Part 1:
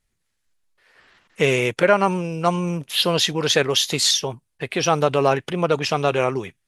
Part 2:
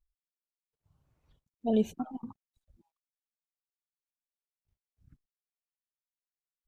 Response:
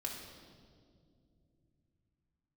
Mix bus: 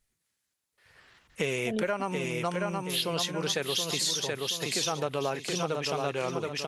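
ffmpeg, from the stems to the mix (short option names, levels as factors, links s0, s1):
-filter_complex "[0:a]highpass=95,highshelf=f=5600:g=6.5,volume=0.596,asplit=2[s0][s1];[s1]volume=0.562[s2];[1:a]volume=0.944[s3];[s2]aecho=0:1:726|1452|2178|2904|3630:1|0.32|0.102|0.0328|0.0105[s4];[s0][s3][s4]amix=inputs=3:normalize=0,acompressor=threshold=0.0355:ratio=3"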